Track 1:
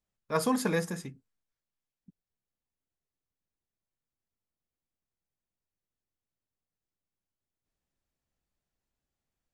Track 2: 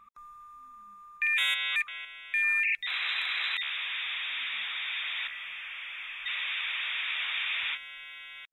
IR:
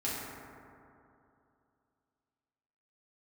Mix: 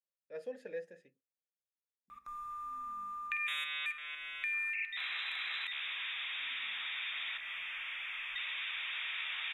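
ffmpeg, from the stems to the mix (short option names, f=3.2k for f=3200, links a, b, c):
-filter_complex "[0:a]asplit=3[a][b][c];[a]bandpass=f=530:t=q:w=8,volume=0dB[d];[b]bandpass=f=1.84k:t=q:w=8,volume=-6dB[e];[c]bandpass=f=2.48k:t=q:w=8,volume=-9dB[f];[d][e][f]amix=inputs=3:normalize=0,volume=-6dB[g];[1:a]acompressor=threshold=-44dB:ratio=3,adelay=2100,volume=2dB,asplit=2[h][i];[i]volume=-13dB[j];[2:a]atrim=start_sample=2205[k];[j][k]afir=irnorm=-1:irlink=0[l];[g][h][l]amix=inputs=3:normalize=0"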